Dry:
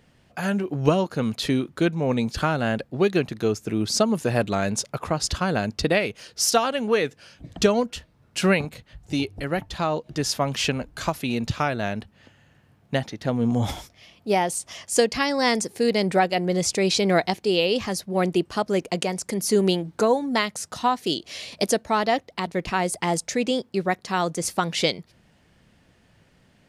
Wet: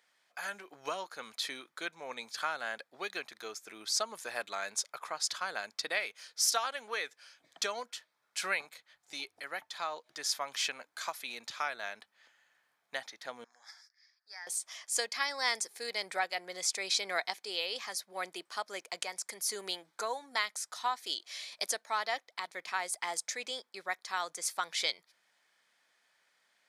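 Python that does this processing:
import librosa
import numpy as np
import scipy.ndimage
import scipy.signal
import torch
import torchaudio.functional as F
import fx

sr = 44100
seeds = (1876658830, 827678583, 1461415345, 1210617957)

y = fx.double_bandpass(x, sr, hz=2900.0, octaves=1.5, at=(13.44, 14.47))
y = scipy.signal.sosfilt(scipy.signal.butter(2, 1100.0, 'highpass', fs=sr, output='sos'), y)
y = fx.notch(y, sr, hz=2800.0, q=6.8)
y = y * 10.0 ** (-6.0 / 20.0)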